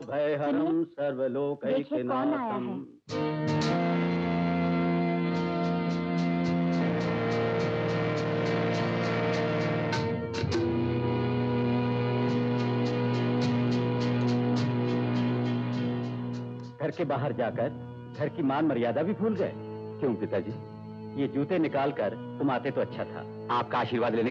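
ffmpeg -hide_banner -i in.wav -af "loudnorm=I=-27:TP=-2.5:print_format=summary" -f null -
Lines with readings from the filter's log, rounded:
Input Integrated:    -29.0 LUFS
Input True Peak:     -16.4 dBTP
Input LRA:             3.0 LU
Input Threshold:     -39.1 LUFS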